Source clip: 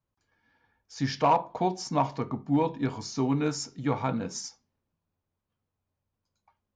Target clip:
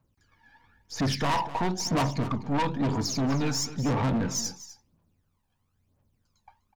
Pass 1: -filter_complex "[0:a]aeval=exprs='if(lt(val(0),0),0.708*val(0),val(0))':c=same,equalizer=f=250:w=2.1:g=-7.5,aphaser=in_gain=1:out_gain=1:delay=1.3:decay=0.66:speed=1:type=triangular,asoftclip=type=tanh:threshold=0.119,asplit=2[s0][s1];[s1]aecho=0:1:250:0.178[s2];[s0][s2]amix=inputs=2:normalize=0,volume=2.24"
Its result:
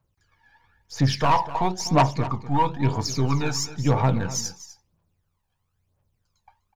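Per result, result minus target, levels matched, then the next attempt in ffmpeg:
saturation: distortion -8 dB; 250 Hz band -3.5 dB
-filter_complex "[0:a]aeval=exprs='if(lt(val(0),0),0.708*val(0),val(0))':c=same,equalizer=f=250:w=2.1:g=-7.5,aphaser=in_gain=1:out_gain=1:delay=1.3:decay=0.66:speed=1:type=triangular,asoftclip=type=tanh:threshold=0.0316,asplit=2[s0][s1];[s1]aecho=0:1:250:0.178[s2];[s0][s2]amix=inputs=2:normalize=0,volume=2.24"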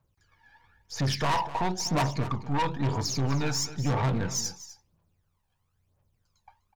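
250 Hz band -3.5 dB
-filter_complex "[0:a]aeval=exprs='if(lt(val(0),0),0.708*val(0),val(0))':c=same,equalizer=f=250:w=2.1:g=2.5,aphaser=in_gain=1:out_gain=1:delay=1.3:decay=0.66:speed=1:type=triangular,asoftclip=type=tanh:threshold=0.0316,asplit=2[s0][s1];[s1]aecho=0:1:250:0.178[s2];[s0][s2]amix=inputs=2:normalize=0,volume=2.24"

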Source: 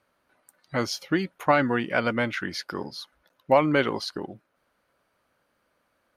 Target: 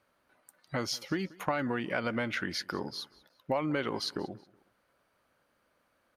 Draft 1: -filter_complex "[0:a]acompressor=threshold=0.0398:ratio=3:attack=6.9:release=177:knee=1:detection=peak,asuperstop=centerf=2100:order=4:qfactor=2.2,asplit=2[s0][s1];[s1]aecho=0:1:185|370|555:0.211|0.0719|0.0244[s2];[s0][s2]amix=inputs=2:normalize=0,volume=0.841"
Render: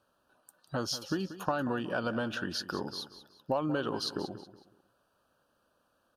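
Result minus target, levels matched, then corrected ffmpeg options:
echo-to-direct +9.5 dB; 2 kHz band -2.5 dB
-filter_complex "[0:a]acompressor=threshold=0.0398:ratio=3:attack=6.9:release=177:knee=1:detection=peak,asplit=2[s0][s1];[s1]aecho=0:1:185|370:0.0708|0.0241[s2];[s0][s2]amix=inputs=2:normalize=0,volume=0.841"

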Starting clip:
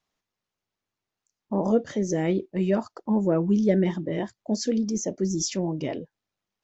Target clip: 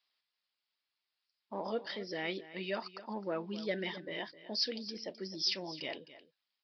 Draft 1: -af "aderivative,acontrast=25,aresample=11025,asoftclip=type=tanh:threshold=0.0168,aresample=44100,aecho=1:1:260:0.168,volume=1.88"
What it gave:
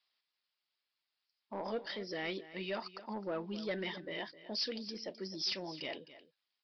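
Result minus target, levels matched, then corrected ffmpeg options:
saturation: distortion +11 dB
-af "aderivative,acontrast=25,aresample=11025,asoftclip=type=tanh:threshold=0.0473,aresample=44100,aecho=1:1:260:0.168,volume=1.88"

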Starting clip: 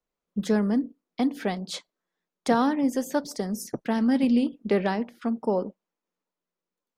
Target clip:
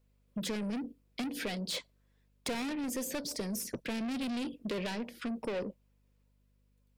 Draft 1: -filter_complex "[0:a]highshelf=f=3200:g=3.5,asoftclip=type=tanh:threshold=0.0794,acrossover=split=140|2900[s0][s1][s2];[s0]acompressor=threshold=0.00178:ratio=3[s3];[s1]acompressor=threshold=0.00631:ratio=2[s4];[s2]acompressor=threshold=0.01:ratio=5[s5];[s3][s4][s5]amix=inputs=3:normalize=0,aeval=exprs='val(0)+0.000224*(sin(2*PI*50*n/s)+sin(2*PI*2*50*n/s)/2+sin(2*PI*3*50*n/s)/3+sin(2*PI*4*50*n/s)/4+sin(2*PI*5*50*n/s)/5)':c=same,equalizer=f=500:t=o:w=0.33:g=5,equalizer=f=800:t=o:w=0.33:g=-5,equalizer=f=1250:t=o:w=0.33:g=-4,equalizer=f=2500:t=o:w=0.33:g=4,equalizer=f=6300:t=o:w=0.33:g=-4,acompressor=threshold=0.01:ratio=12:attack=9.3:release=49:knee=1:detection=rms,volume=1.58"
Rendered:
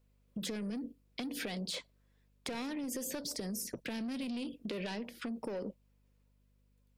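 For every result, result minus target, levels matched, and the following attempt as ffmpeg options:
compression: peak gain reduction +10 dB; saturation: distortion -6 dB
-filter_complex "[0:a]highshelf=f=3200:g=3.5,asoftclip=type=tanh:threshold=0.0794,acrossover=split=140|2900[s0][s1][s2];[s0]acompressor=threshold=0.00178:ratio=3[s3];[s1]acompressor=threshold=0.00631:ratio=2[s4];[s2]acompressor=threshold=0.01:ratio=5[s5];[s3][s4][s5]amix=inputs=3:normalize=0,aeval=exprs='val(0)+0.000224*(sin(2*PI*50*n/s)+sin(2*PI*2*50*n/s)/2+sin(2*PI*3*50*n/s)/3+sin(2*PI*4*50*n/s)/4+sin(2*PI*5*50*n/s)/5)':c=same,equalizer=f=500:t=o:w=0.33:g=5,equalizer=f=800:t=o:w=0.33:g=-5,equalizer=f=1250:t=o:w=0.33:g=-4,equalizer=f=2500:t=o:w=0.33:g=4,equalizer=f=6300:t=o:w=0.33:g=-4,volume=1.58"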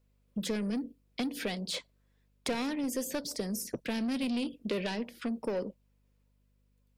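saturation: distortion -6 dB
-filter_complex "[0:a]highshelf=f=3200:g=3.5,asoftclip=type=tanh:threshold=0.0316,acrossover=split=140|2900[s0][s1][s2];[s0]acompressor=threshold=0.00178:ratio=3[s3];[s1]acompressor=threshold=0.00631:ratio=2[s4];[s2]acompressor=threshold=0.01:ratio=5[s5];[s3][s4][s5]amix=inputs=3:normalize=0,aeval=exprs='val(0)+0.000224*(sin(2*PI*50*n/s)+sin(2*PI*2*50*n/s)/2+sin(2*PI*3*50*n/s)/3+sin(2*PI*4*50*n/s)/4+sin(2*PI*5*50*n/s)/5)':c=same,equalizer=f=500:t=o:w=0.33:g=5,equalizer=f=800:t=o:w=0.33:g=-5,equalizer=f=1250:t=o:w=0.33:g=-4,equalizer=f=2500:t=o:w=0.33:g=4,equalizer=f=6300:t=o:w=0.33:g=-4,volume=1.58"

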